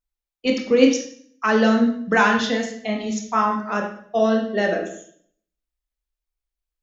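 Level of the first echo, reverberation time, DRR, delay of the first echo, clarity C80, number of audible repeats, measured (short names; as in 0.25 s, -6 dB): none, 0.60 s, 1.0 dB, none, 9.5 dB, none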